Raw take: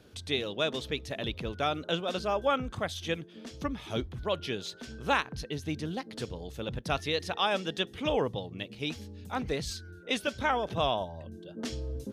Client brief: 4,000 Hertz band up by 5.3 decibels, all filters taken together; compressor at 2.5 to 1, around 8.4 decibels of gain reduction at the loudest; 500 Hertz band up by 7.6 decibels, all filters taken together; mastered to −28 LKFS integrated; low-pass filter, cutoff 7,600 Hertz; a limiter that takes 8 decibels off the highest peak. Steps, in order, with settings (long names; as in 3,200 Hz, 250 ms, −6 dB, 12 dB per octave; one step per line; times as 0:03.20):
low-pass filter 7,600 Hz
parametric band 500 Hz +9 dB
parametric band 4,000 Hz +6.5 dB
downward compressor 2.5 to 1, threshold −29 dBFS
level +7 dB
brickwall limiter −16 dBFS